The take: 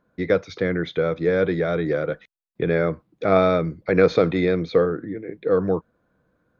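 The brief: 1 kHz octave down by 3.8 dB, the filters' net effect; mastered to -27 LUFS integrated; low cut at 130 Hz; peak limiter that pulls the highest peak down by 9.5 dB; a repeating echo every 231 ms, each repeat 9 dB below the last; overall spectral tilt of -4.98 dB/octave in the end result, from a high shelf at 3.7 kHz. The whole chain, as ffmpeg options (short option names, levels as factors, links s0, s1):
-af "highpass=130,equalizer=f=1000:t=o:g=-5.5,highshelf=f=3700:g=-3.5,alimiter=limit=0.2:level=0:latency=1,aecho=1:1:231|462|693|924:0.355|0.124|0.0435|0.0152,volume=0.841"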